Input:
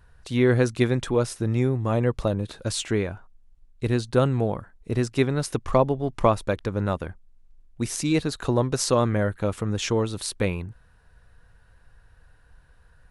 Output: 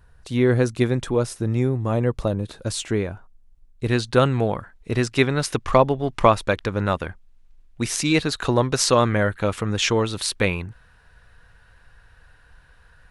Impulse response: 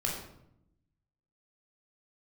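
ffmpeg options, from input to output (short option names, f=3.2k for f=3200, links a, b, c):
-af "asetnsamples=n=441:p=0,asendcmd='3.87 equalizer g 7.5',equalizer=f=2.5k:t=o:w=2.9:g=-2,volume=1.5dB"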